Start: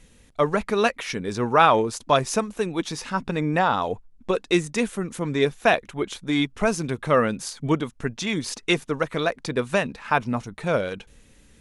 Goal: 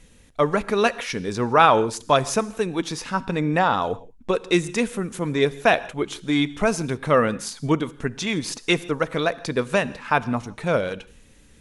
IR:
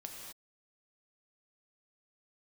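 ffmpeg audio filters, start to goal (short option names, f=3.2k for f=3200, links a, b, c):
-filter_complex "[0:a]asplit=2[a][b];[1:a]atrim=start_sample=2205,asetrate=66150,aresample=44100[c];[b][c]afir=irnorm=-1:irlink=0,volume=-7dB[d];[a][d]amix=inputs=2:normalize=0"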